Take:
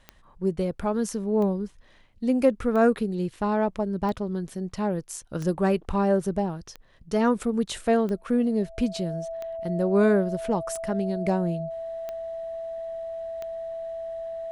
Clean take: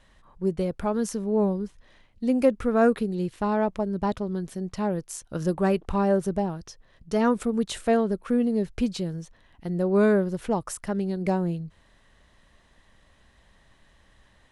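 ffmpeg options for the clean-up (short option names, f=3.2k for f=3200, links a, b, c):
-af "adeclick=t=4,bandreject=f=660:w=30"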